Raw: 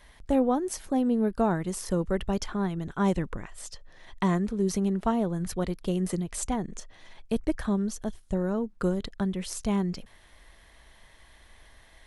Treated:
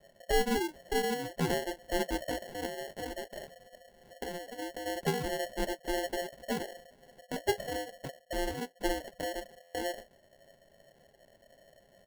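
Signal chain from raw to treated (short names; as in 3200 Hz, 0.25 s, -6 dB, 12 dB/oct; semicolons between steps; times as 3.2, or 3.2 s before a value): band-swap scrambler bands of 500 Hz; LPF 1100 Hz 24 dB/oct; comb 4.8 ms, depth 64%; 2.65–4.86 compressor 6:1, threshold -32 dBFS, peak gain reduction 11 dB; flange 0.86 Hz, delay 6.5 ms, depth 7.8 ms, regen -46%; sample-and-hold 36×; stuck buffer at 9.62, samples 512, times 10; gain -1 dB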